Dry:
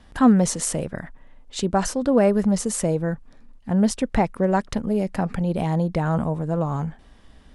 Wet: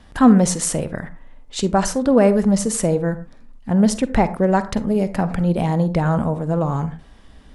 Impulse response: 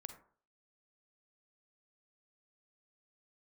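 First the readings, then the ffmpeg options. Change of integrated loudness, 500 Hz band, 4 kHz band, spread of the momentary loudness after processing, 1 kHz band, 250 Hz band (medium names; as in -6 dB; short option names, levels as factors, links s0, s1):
+3.5 dB, +3.5 dB, +3.5 dB, 13 LU, +3.5 dB, +4.0 dB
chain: -filter_complex "[0:a]asplit=2[s0][s1];[1:a]atrim=start_sample=2205,atrim=end_sample=6615[s2];[s1][s2]afir=irnorm=-1:irlink=0,volume=2.11[s3];[s0][s3]amix=inputs=2:normalize=0,volume=0.708"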